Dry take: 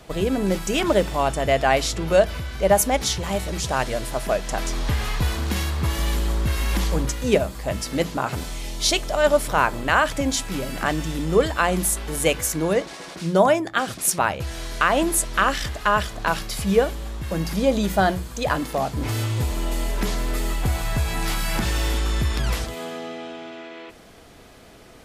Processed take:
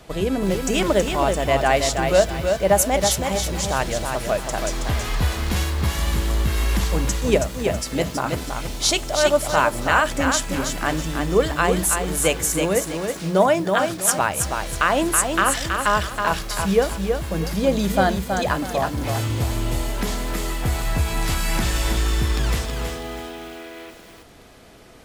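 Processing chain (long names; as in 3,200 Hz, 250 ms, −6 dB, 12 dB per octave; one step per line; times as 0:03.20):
dynamic equaliser 7,500 Hz, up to +4 dB, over −40 dBFS, Q 2.4
feedback echo at a low word length 324 ms, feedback 35%, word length 7 bits, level −5 dB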